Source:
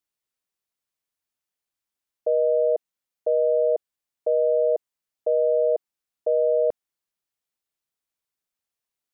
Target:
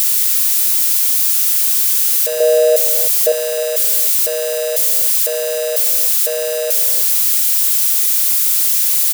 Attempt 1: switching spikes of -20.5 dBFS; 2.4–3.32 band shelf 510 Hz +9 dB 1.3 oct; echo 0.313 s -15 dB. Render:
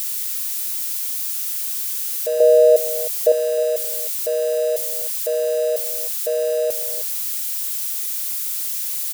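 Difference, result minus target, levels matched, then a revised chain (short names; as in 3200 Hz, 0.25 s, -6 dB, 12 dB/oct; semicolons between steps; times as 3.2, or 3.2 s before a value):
switching spikes: distortion -11 dB
switching spikes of -9.5 dBFS; 2.4–3.32 band shelf 510 Hz +9 dB 1.3 oct; echo 0.313 s -15 dB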